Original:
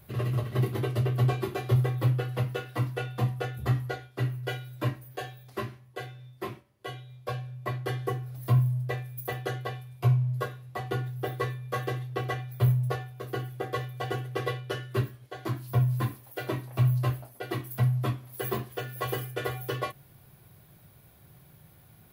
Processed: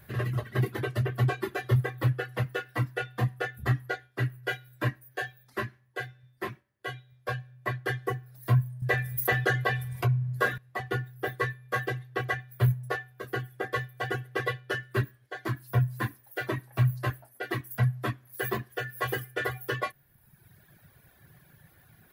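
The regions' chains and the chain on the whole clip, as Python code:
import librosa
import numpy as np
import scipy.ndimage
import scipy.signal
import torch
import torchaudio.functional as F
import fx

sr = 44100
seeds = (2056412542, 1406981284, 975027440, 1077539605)

y = fx.chain(x, sr, fx.comb_fb(f0_hz=94.0, decay_s=1.9, harmonics='all', damping=0.0, mix_pct=30),
    fx.env_flatten(amount_pct=70), at=(8.82, 10.58))
y = fx.dereverb_blind(y, sr, rt60_s=1.1)
y = fx.peak_eq(y, sr, hz=1700.0, db=12.0, octaves=0.44)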